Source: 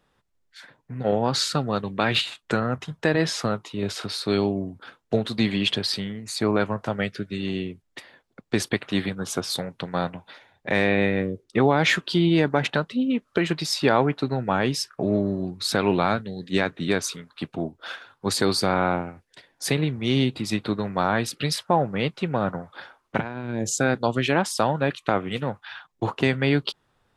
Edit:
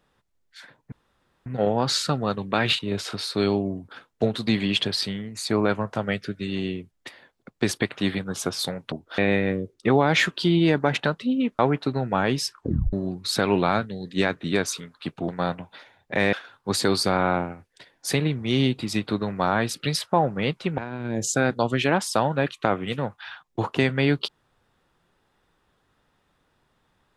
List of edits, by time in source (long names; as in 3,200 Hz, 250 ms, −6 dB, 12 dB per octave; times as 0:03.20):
0:00.92: splice in room tone 0.54 s
0:02.25–0:03.70: remove
0:09.83–0:10.88: swap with 0:17.64–0:17.90
0:13.29–0:13.95: remove
0:14.88: tape stop 0.41 s
0:22.35–0:23.22: remove